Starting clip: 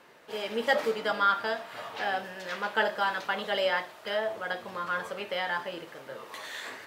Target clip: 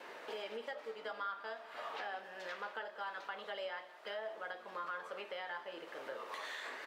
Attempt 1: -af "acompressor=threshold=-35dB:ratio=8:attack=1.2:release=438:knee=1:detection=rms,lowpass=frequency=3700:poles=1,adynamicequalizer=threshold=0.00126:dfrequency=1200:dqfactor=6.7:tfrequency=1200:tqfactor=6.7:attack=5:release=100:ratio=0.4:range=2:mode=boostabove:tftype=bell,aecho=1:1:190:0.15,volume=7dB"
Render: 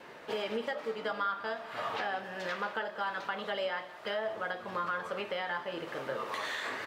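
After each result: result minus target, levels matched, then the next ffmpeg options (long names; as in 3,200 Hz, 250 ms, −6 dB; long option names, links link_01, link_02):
downward compressor: peak gain reduction −8 dB; 250 Hz band +5.5 dB
-af "acompressor=threshold=-44dB:ratio=8:attack=1.2:release=438:knee=1:detection=rms,lowpass=frequency=3700:poles=1,adynamicequalizer=threshold=0.00126:dfrequency=1200:dqfactor=6.7:tfrequency=1200:tqfactor=6.7:attack=5:release=100:ratio=0.4:range=2:mode=boostabove:tftype=bell,aecho=1:1:190:0.15,volume=7dB"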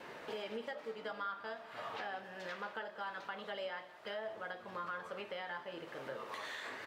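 250 Hz band +6.0 dB
-af "acompressor=threshold=-44dB:ratio=8:attack=1.2:release=438:knee=1:detection=rms,lowpass=frequency=3700:poles=1,adynamicequalizer=threshold=0.00126:dfrequency=1200:dqfactor=6.7:tfrequency=1200:tqfactor=6.7:attack=5:release=100:ratio=0.4:range=2:mode=boostabove:tftype=bell,highpass=350,aecho=1:1:190:0.15,volume=7dB"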